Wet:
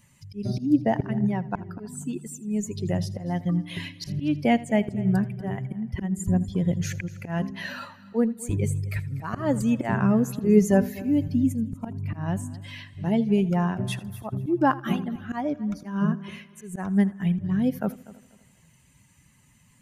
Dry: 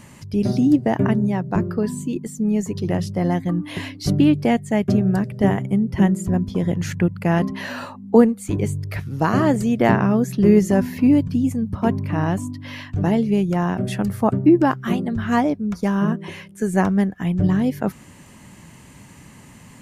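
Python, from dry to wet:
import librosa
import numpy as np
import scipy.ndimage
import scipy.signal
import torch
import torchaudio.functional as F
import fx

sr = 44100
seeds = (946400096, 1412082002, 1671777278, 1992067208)

y = fx.bin_expand(x, sr, power=1.5)
y = fx.auto_swell(y, sr, attack_ms=235.0)
y = fx.echo_heads(y, sr, ms=81, heads='first and third', feedback_pct=41, wet_db=-20.0)
y = y * librosa.db_to_amplitude(1.5)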